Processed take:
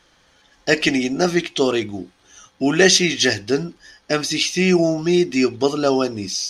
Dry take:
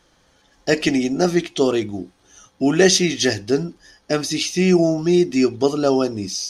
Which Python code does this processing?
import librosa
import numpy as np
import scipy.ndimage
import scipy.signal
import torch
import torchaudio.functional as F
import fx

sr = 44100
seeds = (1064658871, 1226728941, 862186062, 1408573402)

y = fx.peak_eq(x, sr, hz=2400.0, db=6.5, octaves=2.5)
y = y * 10.0 ** (-1.5 / 20.0)